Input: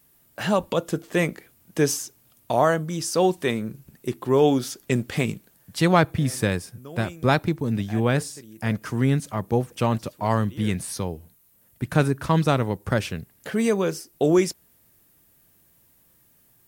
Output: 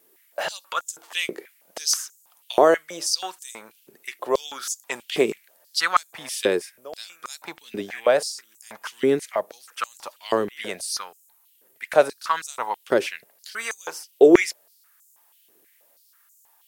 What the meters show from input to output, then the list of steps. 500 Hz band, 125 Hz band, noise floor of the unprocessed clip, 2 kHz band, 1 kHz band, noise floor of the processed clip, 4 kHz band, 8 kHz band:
+1.5 dB, −22.0 dB, −60 dBFS, +1.0 dB, 0.0 dB, −60 dBFS, +4.5 dB, +3.5 dB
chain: pitch vibrato 0.74 Hz 5.6 cents
high-pass on a step sequencer 6.2 Hz 390–7,000 Hz

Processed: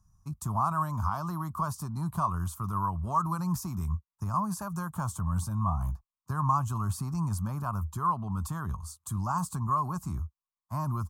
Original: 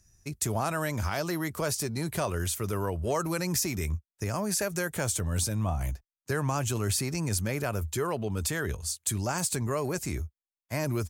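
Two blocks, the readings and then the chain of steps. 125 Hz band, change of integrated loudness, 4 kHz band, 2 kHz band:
+0.5 dB, −1.5 dB, −15.5 dB, −12.0 dB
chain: drawn EQ curve 120 Hz 0 dB, 180 Hz +3 dB, 470 Hz −22 dB, 1,100 Hz +12 dB, 2,000 Hz −27 dB, 2,900 Hz −18 dB, 12,000 Hz −10 dB

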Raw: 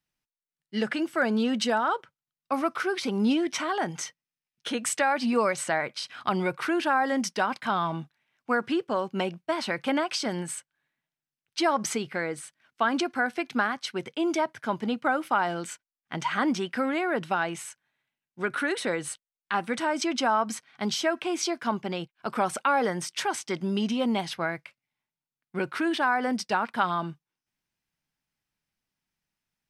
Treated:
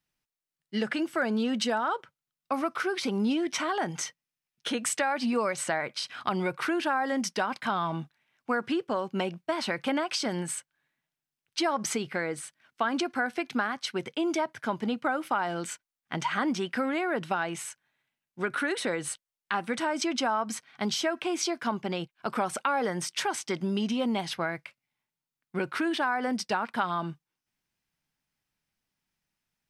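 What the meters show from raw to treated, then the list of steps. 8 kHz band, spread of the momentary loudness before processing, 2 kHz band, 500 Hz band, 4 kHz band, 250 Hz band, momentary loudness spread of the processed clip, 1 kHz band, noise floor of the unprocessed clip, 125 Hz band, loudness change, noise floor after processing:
0.0 dB, 9 LU, −2.5 dB, −2.0 dB, −0.5 dB, −2.0 dB, 8 LU, −3.0 dB, below −85 dBFS, −1.0 dB, −2.0 dB, below −85 dBFS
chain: downward compressor 2 to 1, threshold −29 dBFS, peak gain reduction 6 dB
level +1.5 dB

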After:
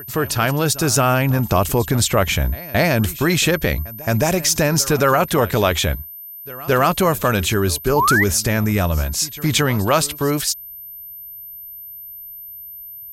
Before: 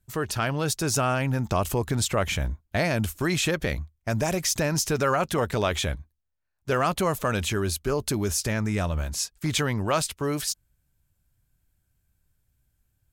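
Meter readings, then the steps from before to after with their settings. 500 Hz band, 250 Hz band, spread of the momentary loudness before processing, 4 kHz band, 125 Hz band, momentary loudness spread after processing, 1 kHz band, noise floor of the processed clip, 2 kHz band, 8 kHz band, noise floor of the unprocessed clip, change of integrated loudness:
+8.0 dB, +8.0 dB, 6 LU, +8.0 dB, +8.0 dB, 17 LU, +9.0 dB, −36 dBFS, +9.5 dB, +8.0 dB, −74 dBFS, +8.5 dB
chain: echo ahead of the sound 220 ms −19 dB
steady tone 13,000 Hz −41 dBFS
sound drawn into the spectrogram rise, 0:07.96–0:08.24, 830–2,100 Hz −24 dBFS
level +8 dB

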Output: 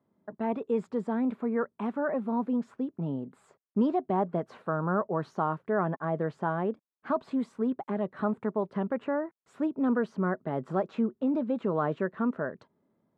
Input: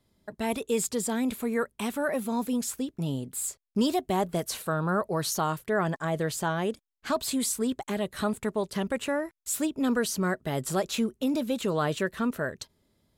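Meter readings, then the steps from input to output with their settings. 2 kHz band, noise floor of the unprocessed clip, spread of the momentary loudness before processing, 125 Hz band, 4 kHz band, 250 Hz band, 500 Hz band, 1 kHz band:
−5.5 dB, −74 dBFS, 5 LU, −2.0 dB, below −20 dB, −0.5 dB, −1.0 dB, −0.5 dB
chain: Chebyshev band-pass filter 180–1,200 Hz, order 2

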